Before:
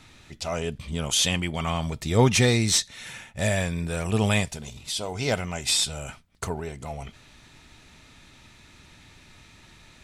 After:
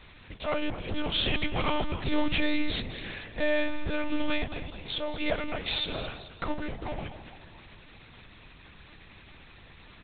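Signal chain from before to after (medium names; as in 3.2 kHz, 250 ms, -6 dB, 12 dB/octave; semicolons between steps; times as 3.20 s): 4.43–5.74 s: high-pass 140 Hz 24 dB/octave; peak limiter -15 dBFS, peak gain reduction 8 dB; companded quantiser 4-bit; frequency-shifting echo 216 ms, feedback 50%, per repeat +36 Hz, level -12.5 dB; monotone LPC vocoder at 8 kHz 300 Hz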